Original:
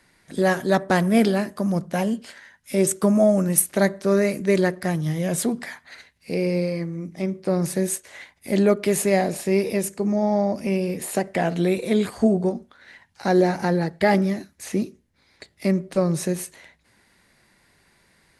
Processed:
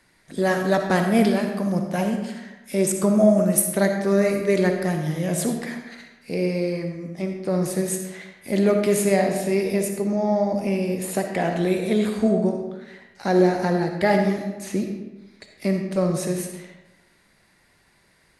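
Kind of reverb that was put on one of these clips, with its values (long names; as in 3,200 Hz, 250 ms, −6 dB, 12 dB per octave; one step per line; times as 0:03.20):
comb and all-pass reverb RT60 1.1 s, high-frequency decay 0.7×, pre-delay 20 ms, DRR 4 dB
level −1.5 dB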